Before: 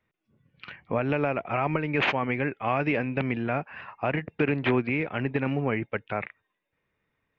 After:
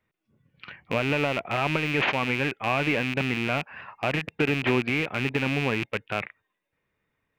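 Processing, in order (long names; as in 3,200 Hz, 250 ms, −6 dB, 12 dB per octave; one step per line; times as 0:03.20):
loose part that buzzes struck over −36 dBFS, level −18 dBFS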